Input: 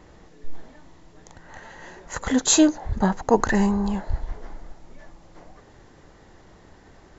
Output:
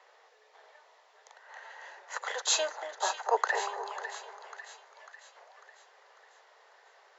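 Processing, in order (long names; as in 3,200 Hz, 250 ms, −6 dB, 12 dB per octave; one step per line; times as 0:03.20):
Butterworth high-pass 400 Hz 72 dB per octave
three-way crossover with the lows and the highs turned down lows −17 dB, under 550 Hz, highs −17 dB, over 6,200 Hz
echo with a time of its own for lows and highs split 1,300 Hz, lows 236 ms, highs 547 ms, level −9.5 dB
level −3.5 dB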